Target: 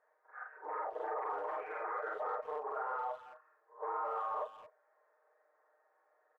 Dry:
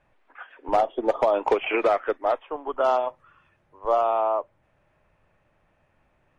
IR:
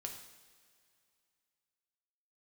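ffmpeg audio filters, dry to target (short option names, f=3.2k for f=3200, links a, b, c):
-filter_complex "[0:a]afftfilt=real='re':imag='-im':win_size=4096:overlap=0.75,afftfilt=real='re*lt(hypot(re,im),0.178)':imag='im*lt(hypot(re,im),0.178)':win_size=1024:overlap=0.75,aecho=1:1:6.5:0.78,alimiter=level_in=3dB:limit=-24dB:level=0:latency=1:release=16,volume=-3dB,volume=31dB,asoftclip=hard,volume=-31dB,asuperpass=centerf=880:order=12:qfactor=0.6,asplit=2[a][b];[b]adelay=220,highpass=300,lowpass=3.4k,asoftclip=type=hard:threshold=-34.5dB,volume=-15dB[c];[a][c]amix=inputs=2:normalize=0,volume=-1.5dB"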